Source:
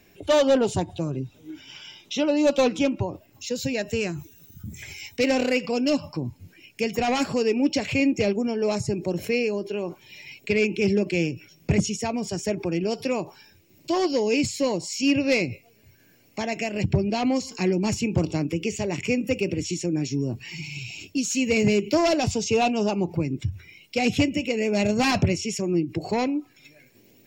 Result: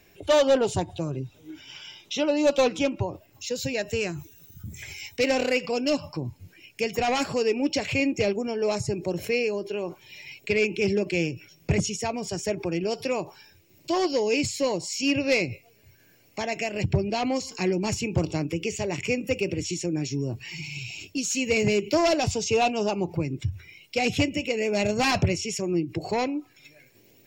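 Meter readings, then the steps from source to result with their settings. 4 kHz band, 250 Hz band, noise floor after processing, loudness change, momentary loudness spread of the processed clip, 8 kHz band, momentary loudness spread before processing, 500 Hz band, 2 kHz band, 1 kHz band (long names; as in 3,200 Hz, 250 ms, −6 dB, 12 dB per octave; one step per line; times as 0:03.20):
0.0 dB, −4.0 dB, −58 dBFS, −1.5 dB, 13 LU, 0.0 dB, 14 LU, −0.5 dB, 0.0 dB, 0.0 dB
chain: parametric band 230 Hz −6 dB 0.8 octaves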